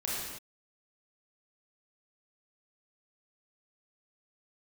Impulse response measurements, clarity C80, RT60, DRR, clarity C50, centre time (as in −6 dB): 0.5 dB, non-exponential decay, −6.5 dB, −2.5 dB, 95 ms